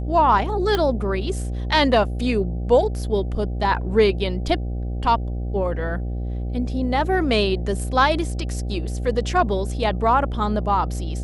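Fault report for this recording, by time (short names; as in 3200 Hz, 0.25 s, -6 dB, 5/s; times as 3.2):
buzz 60 Hz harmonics 13 -26 dBFS
0.75 pop -9 dBFS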